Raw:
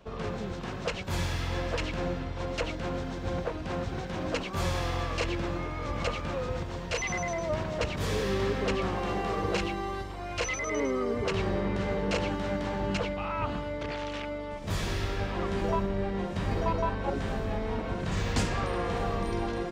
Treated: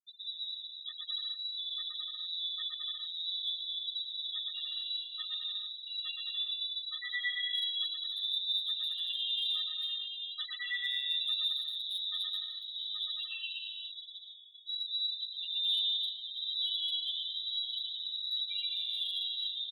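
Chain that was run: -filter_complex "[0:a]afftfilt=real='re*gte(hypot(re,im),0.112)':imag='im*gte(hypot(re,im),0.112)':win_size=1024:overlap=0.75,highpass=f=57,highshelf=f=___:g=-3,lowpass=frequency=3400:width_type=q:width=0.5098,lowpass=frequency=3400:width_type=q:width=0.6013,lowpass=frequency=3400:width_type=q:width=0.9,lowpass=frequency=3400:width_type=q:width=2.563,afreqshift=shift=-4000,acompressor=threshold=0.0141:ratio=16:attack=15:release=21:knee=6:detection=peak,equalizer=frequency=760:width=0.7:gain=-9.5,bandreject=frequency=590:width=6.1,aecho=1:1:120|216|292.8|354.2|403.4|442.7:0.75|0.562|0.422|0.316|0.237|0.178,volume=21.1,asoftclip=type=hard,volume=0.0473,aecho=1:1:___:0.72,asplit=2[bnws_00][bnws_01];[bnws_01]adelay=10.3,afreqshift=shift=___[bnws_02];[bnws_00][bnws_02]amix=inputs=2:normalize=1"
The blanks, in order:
2300, 7.2, 1.1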